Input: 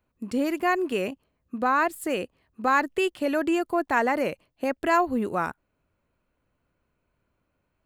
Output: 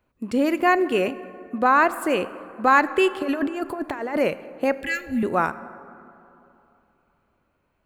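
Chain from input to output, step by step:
bass and treble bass −3 dB, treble −5 dB
0:03.22–0:04.17: compressor whose output falls as the input rises −30 dBFS, ratio −0.5
0:04.75–0:05.23: elliptic band-stop filter 250–1,800 Hz, stop band 40 dB
dense smooth reverb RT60 2.9 s, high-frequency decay 0.4×, DRR 14 dB
level +5.5 dB

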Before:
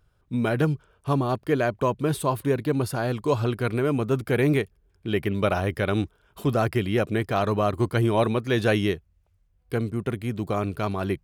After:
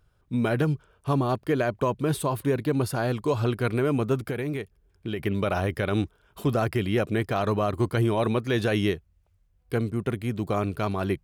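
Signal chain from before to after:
brickwall limiter −15 dBFS, peak gain reduction 6 dB
0:04.15–0:05.19: downward compressor 4 to 1, threshold −28 dBFS, peak gain reduction 8.5 dB

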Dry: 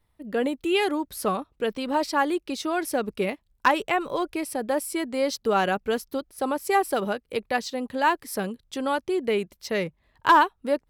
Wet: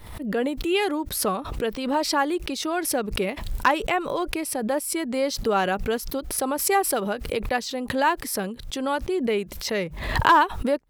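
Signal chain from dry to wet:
background raised ahead of every attack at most 61 dB per second

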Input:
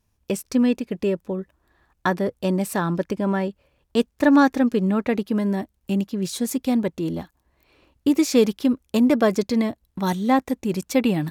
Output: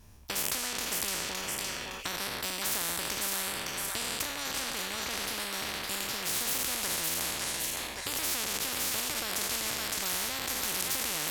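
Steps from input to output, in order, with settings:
peak hold with a decay on every bin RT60 0.84 s
delay with a high-pass on its return 563 ms, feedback 33%, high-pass 1,400 Hz, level −6 dB
boost into a limiter +13.5 dB
every bin compressed towards the loudest bin 10 to 1
level −8.5 dB

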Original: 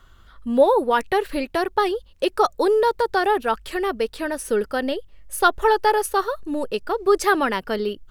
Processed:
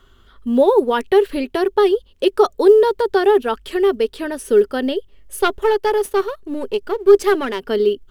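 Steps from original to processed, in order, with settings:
0:05.40–0:07.61: gain on one half-wave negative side −7 dB
thirty-one-band graphic EQ 250 Hz +7 dB, 400 Hz +12 dB, 3,150 Hz +6 dB
floating-point word with a short mantissa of 6 bits
level −1 dB

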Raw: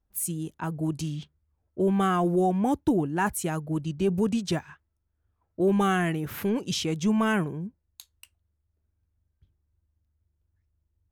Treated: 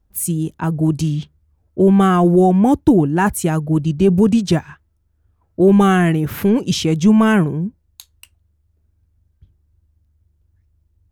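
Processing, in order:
low-shelf EQ 410 Hz +6.5 dB
level +7.5 dB

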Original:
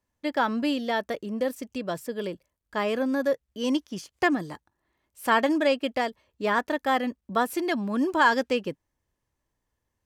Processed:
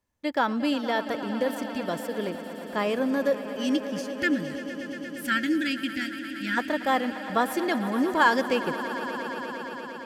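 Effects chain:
gain on a spectral selection 0:03.59–0:06.58, 350–1,300 Hz −27 dB
echo that builds up and dies away 116 ms, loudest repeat 5, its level −16 dB

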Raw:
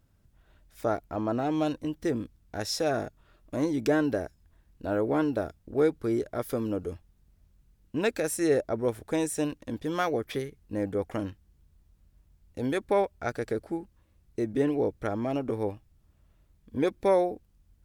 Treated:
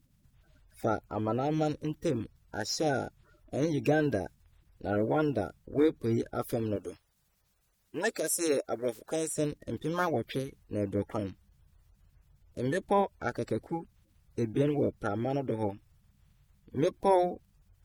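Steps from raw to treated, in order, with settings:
spectral magnitudes quantised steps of 30 dB
0:06.76–0:09.28: bass and treble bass −14 dB, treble +5 dB
level −1 dB

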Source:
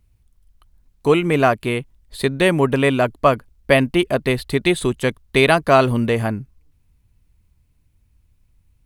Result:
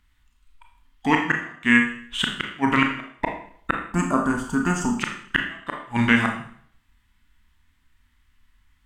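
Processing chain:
gain on a spectral selection 0:03.92–0:04.97, 1,900–5,600 Hz −25 dB
octave-band graphic EQ 125/250/500/1,000/2,000/4,000 Hz −10/+8/−11/+8/+11/+11 dB
formants moved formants −4 semitones
gate with flip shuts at −2 dBFS, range −35 dB
four-comb reverb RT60 0.57 s, combs from 26 ms, DRR 2 dB
level −4.5 dB

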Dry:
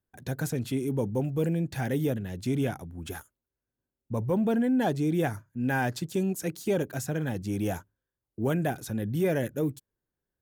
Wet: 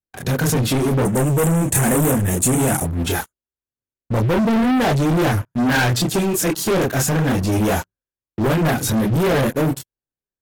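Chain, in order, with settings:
multi-voice chorus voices 4, 0.68 Hz, delay 27 ms, depth 4.7 ms
leveller curve on the samples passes 5
0:01.05–0:02.85: high shelf with overshoot 6,100 Hz +11.5 dB, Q 3
in parallel at −7 dB: gain into a clipping stage and back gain 19.5 dB
on the sum: AAC 64 kbit/s 44,100 Hz

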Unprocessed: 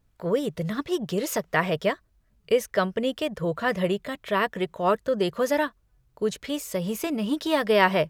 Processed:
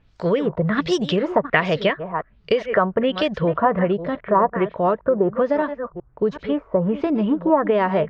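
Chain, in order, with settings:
delay that plays each chunk backwards 375 ms, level −13.5 dB
low-pass filter 8,300 Hz 12 dB per octave, from 0:01.32 3,300 Hz, from 0:03.79 1,200 Hz
downward compressor, threshold −24 dBFS, peak gain reduction 8.5 dB
auto-filter low-pass sine 1.3 Hz 940–5,600 Hz
level +8.5 dB

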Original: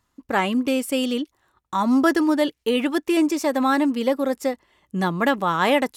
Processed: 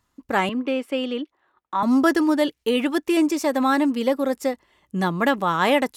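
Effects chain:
0:00.49–0:01.83: three-way crossover with the lows and the highs turned down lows −16 dB, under 240 Hz, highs −21 dB, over 3,500 Hz

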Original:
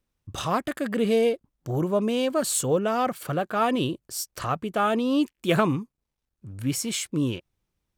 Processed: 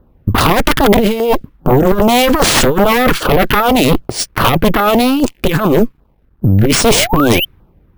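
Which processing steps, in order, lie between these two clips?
low-pass that shuts in the quiet parts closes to 1,000 Hz, open at −18 dBFS
compressor whose output falls as the input rises −28 dBFS, ratio −0.5
harmonic generator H 3 −11 dB, 4 −6 dB, 7 −15 dB, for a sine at −14 dBFS
sound drawn into the spectrogram rise, 0:06.90–0:07.45, 380–3,200 Hz −39 dBFS
auto-filter notch saw down 2.5 Hz 490–2,500 Hz
bad sample-rate conversion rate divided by 3×, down none, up hold
gain into a clipping stage and back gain 19.5 dB
boost into a limiter +27 dB
level −1 dB

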